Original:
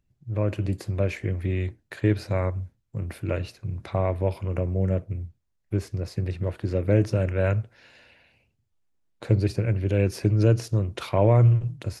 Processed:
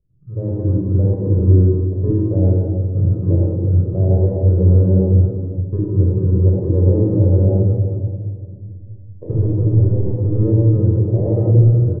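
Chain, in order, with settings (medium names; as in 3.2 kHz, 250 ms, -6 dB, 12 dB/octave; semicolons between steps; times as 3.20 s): bit-reversed sample order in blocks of 32 samples; de-hum 117.7 Hz, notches 33; in parallel at +2 dB: compression, threshold -31 dBFS, peak gain reduction 15 dB; on the sum: peak limiter -12.5 dBFS, peak gain reduction 6 dB; level rider gain up to 7.5 dB; 9.31–10.36 s: overload inside the chain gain 14.5 dB; four-pole ladder low-pass 510 Hz, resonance 40%; on a send: delay 349 ms -18.5 dB; on the sum: simulated room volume 3300 m³, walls mixed, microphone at 5.6 m; trim -1 dB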